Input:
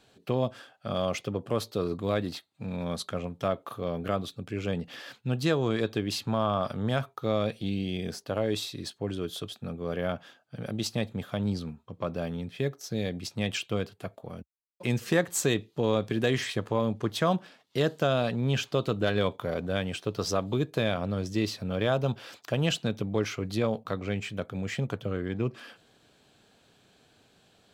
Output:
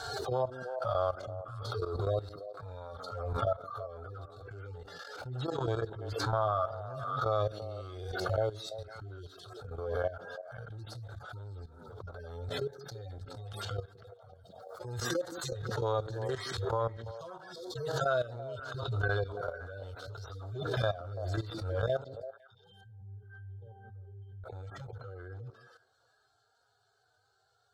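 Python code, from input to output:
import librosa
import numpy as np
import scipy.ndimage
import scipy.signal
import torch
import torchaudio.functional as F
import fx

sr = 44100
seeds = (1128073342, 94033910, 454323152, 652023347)

y = fx.hpss_only(x, sr, part='harmonic')
y = fx.curve_eq(y, sr, hz=(110.0, 190.0, 380.0, 580.0, 840.0, 1400.0, 2400.0, 4300.0, 13000.0), db=(0, -29, 2, 0, 5, 11, -15, 5, -3))
y = fx.level_steps(y, sr, step_db=15)
y = fx.octave_resonator(y, sr, note='G', decay_s=0.41, at=(22.04, 24.44))
y = fx.echo_stepped(y, sr, ms=168, hz=230.0, octaves=1.4, feedback_pct=70, wet_db=-8.5)
y = fx.spec_box(y, sr, start_s=17.53, length_s=0.24, low_hz=510.0, high_hz=3200.0, gain_db=-22)
y = y + 0.37 * np.pad(y, (int(1.4 * sr / 1000.0), 0))[:len(y)]
y = fx.pre_swell(y, sr, db_per_s=35.0)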